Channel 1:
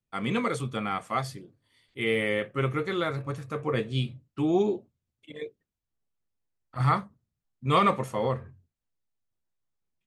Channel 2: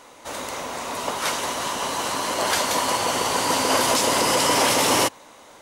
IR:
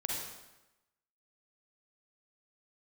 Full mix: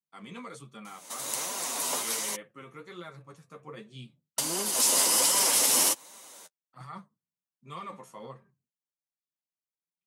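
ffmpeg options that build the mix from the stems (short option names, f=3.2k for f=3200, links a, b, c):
-filter_complex "[0:a]equalizer=f=160:t=o:w=0.67:g=6,equalizer=f=1k:t=o:w=0.67:g=5,equalizer=f=6.3k:t=o:w=0.67:g=3,alimiter=limit=-16.5dB:level=0:latency=1:release=28,volume=-13.5dB,asplit=2[a][b];[1:a]equalizer=f=11k:w=0.45:g=10,alimiter=limit=-9.5dB:level=0:latency=1:release=256,adelay=850,volume=-5.5dB,asplit=3[c][d][e];[c]atrim=end=2.36,asetpts=PTS-STARTPTS,afade=t=out:st=2.356:d=0.004:c=hsin[f];[d]atrim=start=2.36:end=4.38,asetpts=PTS-STARTPTS,volume=0[g];[e]atrim=start=4.38,asetpts=PTS-STARTPTS,afade=t=in:d=0.004:c=hsin[h];[f][g][h]concat=n=3:v=0:a=1[i];[b]apad=whole_len=285106[j];[i][j]sidechaincompress=threshold=-42dB:ratio=8:attack=16:release=181[k];[a][k]amix=inputs=2:normalize=0,highpass=f=150:w=0.5412,highpass=f=150:w=1.3066,highshelf=f=3.8k:g=9,flanger=delay=5:depth=6.9:regen=20:speed=1.3:shape=sinusoidal"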